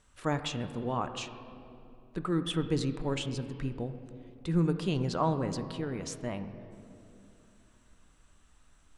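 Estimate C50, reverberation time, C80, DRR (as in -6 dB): 10.5 dB, 2.8 s, 11.0 dB, 8.0 dB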